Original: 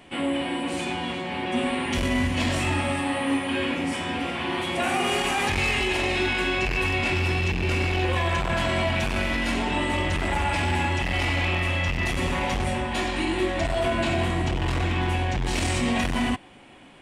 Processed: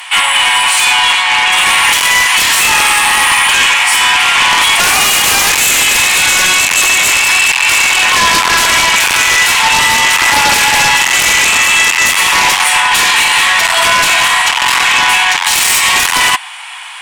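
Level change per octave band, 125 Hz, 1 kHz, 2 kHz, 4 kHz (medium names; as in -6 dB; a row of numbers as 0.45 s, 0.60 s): -6.0 dB, +16.5 dB, +19.5 dB, +21.5 dB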